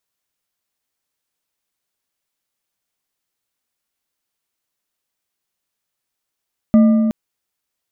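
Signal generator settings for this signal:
struck metal bar, length 0.37 s, lowest mode 222 Hz, modes 4, decay 2.45 s, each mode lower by 12 dB, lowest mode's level −6 dB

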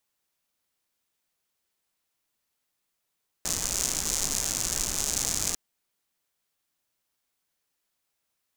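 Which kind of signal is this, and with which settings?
rain-like ticks over hiss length 2.10 s, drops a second 150, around 6,700 Hz, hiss −6.5 dB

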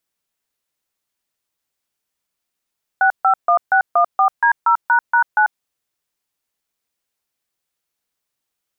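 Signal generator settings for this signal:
touch tones "651614D0##9", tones 92 ms, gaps 144 ms, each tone −13 dBFS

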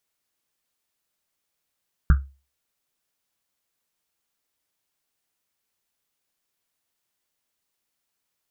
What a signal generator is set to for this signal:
drum after Risset, pitch 68 Hz, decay 0.32 s, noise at 1,400 Hz, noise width 390 Hz, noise 10%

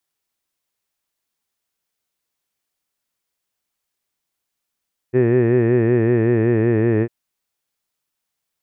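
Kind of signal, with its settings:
vowel from formants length 1.95 s, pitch 122 Hz, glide −1.5 semitones, F1 390 Hz, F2 1,800 Hz, F3 2,500 Hz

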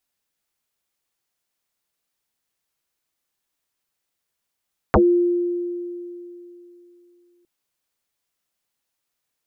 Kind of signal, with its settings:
two-operator FM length 2.51 s, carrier 350 Hz, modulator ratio 0.4, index 11, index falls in 0.12 s exponential, decay 3.10 s, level −10 dB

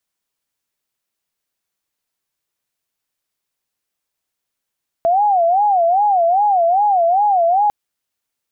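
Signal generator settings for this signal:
siren wail 668–837 Hz 2.5 per second sine −11 dBFS 2.65 s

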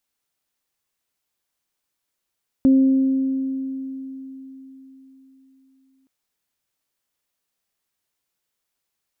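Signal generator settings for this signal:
harmonic partials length 3.42 s, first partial 266 Hz, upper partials −18 dB, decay 4.11 s, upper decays 2.10 s, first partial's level −10 dB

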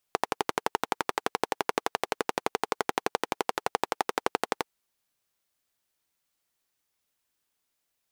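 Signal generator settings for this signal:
pulse-train model of a single-cylinder engine, steady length 4.52 s, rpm 1,400, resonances 450/800 Hz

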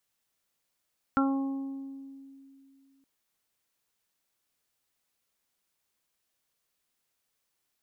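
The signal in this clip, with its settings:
harmonic partials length 1.87 s, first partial 272 Hz, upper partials −11.5/−8.5/−11/0.5 dB, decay 2.71 s, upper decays 1.31/1.22/1.03/0.25 s, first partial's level −22.5 dB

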